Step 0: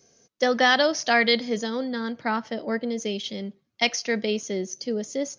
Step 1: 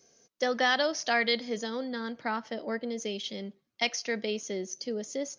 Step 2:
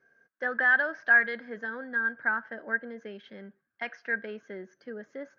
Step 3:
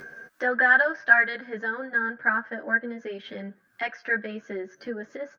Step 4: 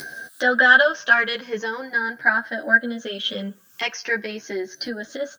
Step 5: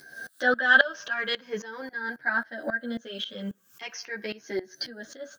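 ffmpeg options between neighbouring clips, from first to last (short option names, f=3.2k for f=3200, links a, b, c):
-filter_complex "[0:a]equalizer=f=88:w=0.58:g=-7,asplit=2[a][b];[b]acompressor=threshold=-31dB:ratio=6,volume=-2.5dB[c];[a][c]amix=inputs=2:normalize=0,volume=-7.5dB"
-af "asoftclip=type=tanh:threshold=-15.5dB,lowpass=f=1.6k:t=q:w=16,volume=-7dB"
-filter_complex "[0:a]acompressor=mode=upward:threshold=-35dB:ratio=2.5,asplit=2[a][b];[b]adelay=10.4,afreqshift=0.42[c];[a][c]amix=inputs=2:normalize=1,volume=8.5dB"
-af "afftfilt=real='re*pow(10,9/40*sin(2*PI*(0.78*log(max(b,1)*sr/1024/100)/log(2)-(-0.42)*(pts-256)/sr)))':imag='im*pow(10,9/40*sin(2*PI*(0.78*log(max(b,1)*sr/1024/100)/log(2)-(-0.42)*(pts-256)/sr)))':win_size=1024:overlap=0.75,aexciter=amount=6.4:drive=3.9:freq=3k,volume=4dB"
-af "aeval=exprs='val(0)*pow(10,-18*if(lt(mod(-3.7*n/s,1),2*abs(-3.7)/1000),1-mod(-3.7*n/s,1)/(2*abs(-3.7)/1000),(mod(-3.7*n/s,1)-2*abs(-3.7)/1000)/(1-2*abs(-3.7)/1000))/20)':c=same"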